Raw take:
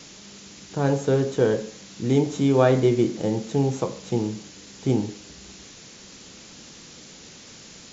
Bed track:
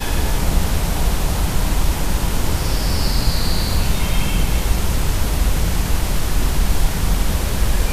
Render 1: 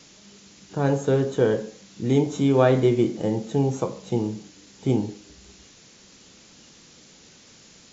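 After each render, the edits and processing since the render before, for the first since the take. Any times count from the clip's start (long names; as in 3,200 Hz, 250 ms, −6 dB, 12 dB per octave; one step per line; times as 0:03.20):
noise reduction from a noise print 6 dB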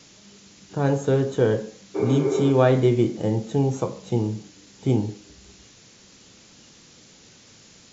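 parametric band 110 Hz +6.5 dB 0.31 octaves
0:01.98–0:02.48: healed spectral selection 280–2,400 Hz after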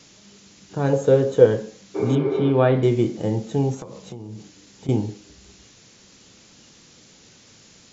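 0:00.93–0:01.46: parametric band 510 Hz +11.5 dB 0.38 octaves
0:02.15–0:02.83: low-pass filter 3,600 Hz 24 dB per octave
0:03.74–0:04.89: downward compressor 16 to 1, threshold −31 dBFS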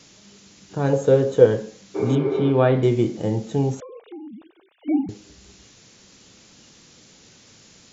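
0:03.80–0:05.09: three sine waves on the formant tracks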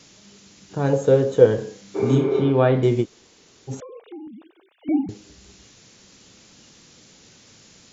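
0:01.55–0:02.45: flutter between parallel walls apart 5.2 metres, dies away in 0.32 s
0:03.03–0:03.70: fill with room tone, crossfade 0.06 s
0:04.27–0:04.89: high-pass filter 190 Hz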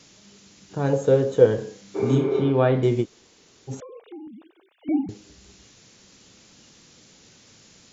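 level −2 dB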